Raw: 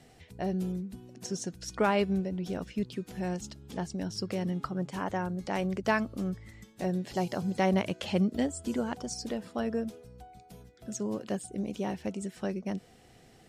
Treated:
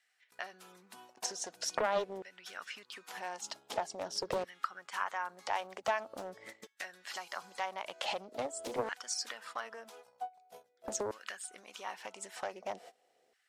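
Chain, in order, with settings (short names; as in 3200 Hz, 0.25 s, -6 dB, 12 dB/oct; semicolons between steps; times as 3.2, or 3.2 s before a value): gate -47 dBFS, range -24 dB; compressor 10:1, threshold -40 dBFS, peak gain reduction 18.5 dB; LFO high-pass saw down 0.45 Hz 480–1700 Hz; Doppler distortion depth 0.5 ms; gain +8.5 dB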